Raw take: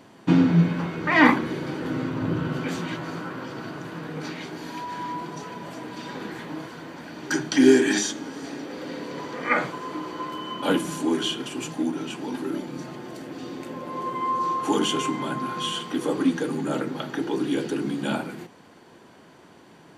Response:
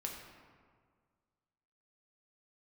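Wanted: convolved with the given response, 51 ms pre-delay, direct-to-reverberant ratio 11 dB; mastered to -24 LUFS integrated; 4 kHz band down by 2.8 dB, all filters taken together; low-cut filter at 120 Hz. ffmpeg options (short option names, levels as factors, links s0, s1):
-filter_complex "[0:a]highpass=120,equalizer=f=4000:t=o:g=-4,asplit=2[s0][s1];[1:a]atrim=start_sample=2205,adelay=51[s2];[s1][s2]afir=irnorm=-1:irlink=0,volume=0.299[s3];[s0][s3]amix=inputs=2:normalize=0,volume=1.26"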